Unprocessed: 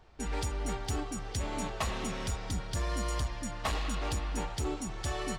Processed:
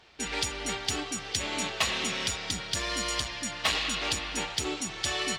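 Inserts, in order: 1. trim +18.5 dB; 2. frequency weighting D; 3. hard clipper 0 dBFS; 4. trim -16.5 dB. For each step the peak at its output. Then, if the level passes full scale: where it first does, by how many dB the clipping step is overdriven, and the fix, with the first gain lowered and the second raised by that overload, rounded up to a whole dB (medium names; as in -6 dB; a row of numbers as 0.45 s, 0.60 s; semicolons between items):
-7.5 dBFS, +3.5 dBFS, 0.0 dBFS, -16.5 dBFS; step 2, 3.5 dB; step 1 +14.5 dB, step 4 -12.5 dB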